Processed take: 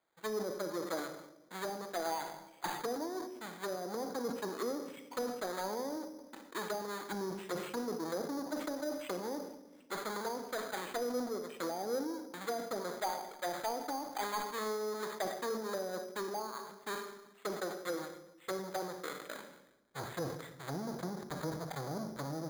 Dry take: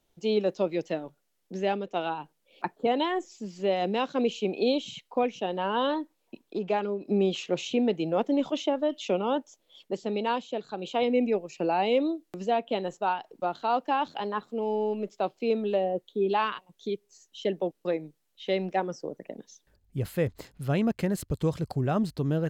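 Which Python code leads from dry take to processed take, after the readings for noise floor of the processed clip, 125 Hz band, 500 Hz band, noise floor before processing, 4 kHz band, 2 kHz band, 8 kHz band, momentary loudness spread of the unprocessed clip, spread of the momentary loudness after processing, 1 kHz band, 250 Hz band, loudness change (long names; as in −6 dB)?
−60 dBFS, −14.0 dB, −10.5 dB, −74 dBFS, −8.5 dB, −6.0 dB, +3.0 dB, 10 LU, 7 LU, −9.5 dB, −11.5 dB, −10.5 dB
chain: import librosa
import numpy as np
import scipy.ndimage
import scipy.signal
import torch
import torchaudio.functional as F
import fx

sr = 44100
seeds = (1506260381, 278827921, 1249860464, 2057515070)

y = fx.halfwave_hold(x, sr)
y = scipy.signal.sosfilt(scipy.signal.cheby2(4, 50, 4900.0, 'lowpass', fs=sr, output='sos'), y)
y = fx.env_lowpass_down(y, sr, base_hz=460.0, full_db=-20.0)
y = np.diff(y, prepend=0.0)
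y = np.clip(y, -10.0 ** (-39.5 / 20.0), 10.0 ** (-39.5 / 20.0))
y = fx.room_shoebox(y, sr, seeds[0], volume_m3=800.0, walls='mixed', distance_m=0.63)
y = np.repeat(scipy.signal.resample_poly(y, 1, 8), 8)[:len(y)]
y = fx.sustainer(y, sr, db_per_s=62.0)
y = y * librosa.db_to_amplitude(11.0)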